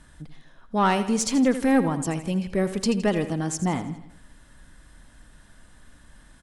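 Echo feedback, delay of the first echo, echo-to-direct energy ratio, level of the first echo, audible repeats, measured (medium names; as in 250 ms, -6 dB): 51%, 82 ms, -11.0 dB, -12.5 dB, 4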